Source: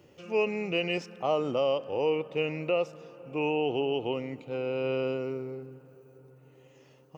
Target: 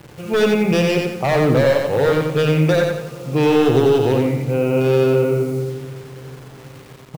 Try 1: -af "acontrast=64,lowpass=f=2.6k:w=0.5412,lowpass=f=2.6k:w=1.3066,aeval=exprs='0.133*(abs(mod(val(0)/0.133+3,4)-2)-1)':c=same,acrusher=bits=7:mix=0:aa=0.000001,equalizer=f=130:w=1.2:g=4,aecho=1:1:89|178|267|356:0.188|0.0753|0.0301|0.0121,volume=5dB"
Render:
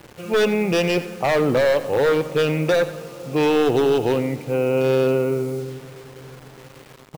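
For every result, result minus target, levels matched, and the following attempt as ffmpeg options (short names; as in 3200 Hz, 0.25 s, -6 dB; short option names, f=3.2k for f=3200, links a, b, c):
echo-to-direct -11 dB; 125 Hz band -5.0 dB
-af "acontrast=64,lowpass=f=2.6k:w=0.5412,lowpass=f=2.6k:w=1.3066,aeval=exprs='0.133*(abs(mod(val(0)/0.133+3,4)-2)-1)':c=same,acrusher=bits=7:mix=0:aa=0.000001,equalizer=f=130:w=1.2:g=4,aecho=1:1:89|178|267|356|445:0.668|0.267|0.107|0.0428|0.0171,volume=5dB"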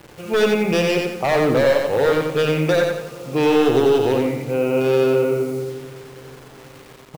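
125 Hz band -6.0 dB
-af "acontrast=64,lowpass=f=2.6k:w=0.5412,lowpass=f=2.6k:w=1.3066,aeval=exprs='0.133*(abs(mod(val(0)/0.133+3,4)-2)-1)':c=same,acrusher=bits=7:mix=0:aa=0.000001,equalizer=f=130:w=1.2:g=12.5,aecho=1:1:89|178|267|356|445:0.668|0.267|0.107|0.0428|0.0171,volume=5dB"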